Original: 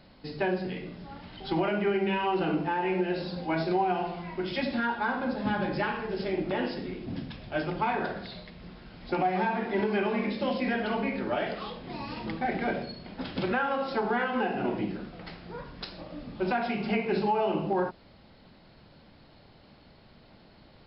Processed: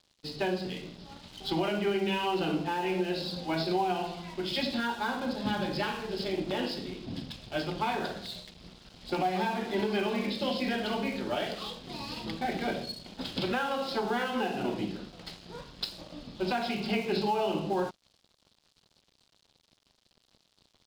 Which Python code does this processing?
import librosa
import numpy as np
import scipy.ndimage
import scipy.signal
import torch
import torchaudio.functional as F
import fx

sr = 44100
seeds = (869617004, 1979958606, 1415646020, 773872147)

y = np.sign(x) * np.maximum(np.abs(x) - 10.0 ** (-51.0 / 20.0), 0.0)
y = fx.high_shelf_res(y, sr, hz=2700.0, db=7.5, q=1.5)
y = y * 10.0 ** (-1.5 / 20.0)